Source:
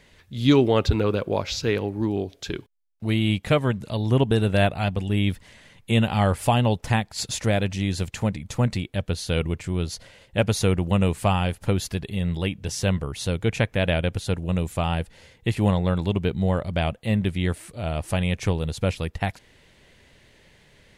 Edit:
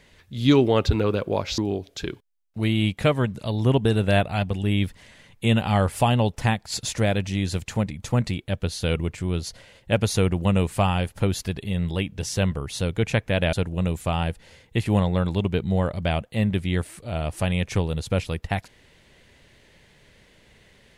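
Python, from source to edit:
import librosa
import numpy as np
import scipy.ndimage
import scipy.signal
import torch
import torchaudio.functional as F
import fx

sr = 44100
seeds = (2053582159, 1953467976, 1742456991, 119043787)

y = fx.edit(x, sr, fx.cut(start_s=1.58, length_s=0.46),
    fx.cut(start_s=13.99, length_s=0.25), tone=tone)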